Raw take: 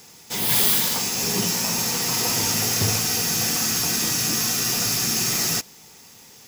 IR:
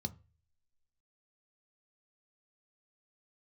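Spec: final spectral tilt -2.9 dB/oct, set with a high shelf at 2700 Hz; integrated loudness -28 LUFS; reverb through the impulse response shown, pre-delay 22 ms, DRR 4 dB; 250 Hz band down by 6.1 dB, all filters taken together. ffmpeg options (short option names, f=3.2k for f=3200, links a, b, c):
-filter_complex "[0:a]equalizer=f=250:t=o:g=-8.5,highshelf=f=2.7k:g=-5,asplit=2[a][b];[1:a]atrim=start_sample=2205,adelay=22[c];[b][c]afir=irnorm=-1:irlink=0,volume=-2.5dB[d];[a][d]amix=inputs=2:normalize=0,volume=-6.5dB"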